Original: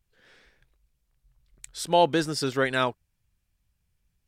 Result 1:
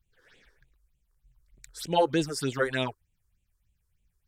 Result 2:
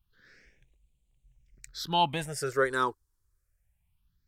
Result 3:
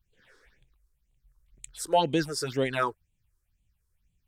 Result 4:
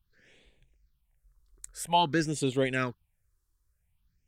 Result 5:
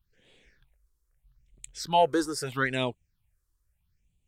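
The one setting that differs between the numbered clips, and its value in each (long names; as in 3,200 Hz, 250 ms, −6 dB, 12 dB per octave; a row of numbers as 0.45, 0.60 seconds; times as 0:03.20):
all-pass phaser, speed: 3.3, 0.25, 2, 0.5, 0.78 Hertz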